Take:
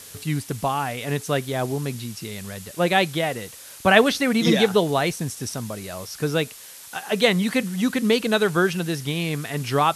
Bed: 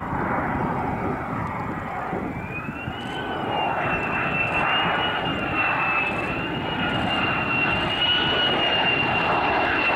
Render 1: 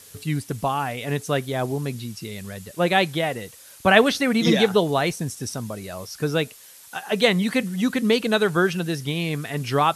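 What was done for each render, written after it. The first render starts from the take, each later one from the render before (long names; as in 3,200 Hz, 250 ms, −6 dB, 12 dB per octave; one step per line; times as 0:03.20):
broadband denoise 6 dB, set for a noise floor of −42 dBFS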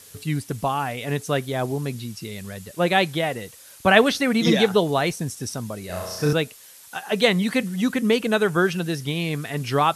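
0:05.86–0:06.33: flutter between parallel walls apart 5.8 metres, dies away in 1 s
0:07.92–0:08.59: parametric band 4,100 Hz −6.5 dB 0.39 octaves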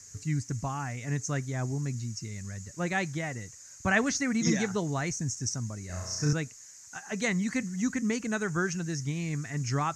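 drawn EQ curve 120 Hz 0 dB, 180 Hz −7 dB, 290 Hz −7 dB, 470 Hz −16 dB, 910 Hz −12 dB, 2,000 Hz −6 dB, 3,400 Hz −22 dB, 6,700 Hz +8 dB, 10,000 Hz −23 dB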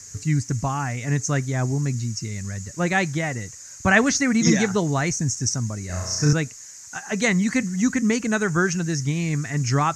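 level +8.5 dB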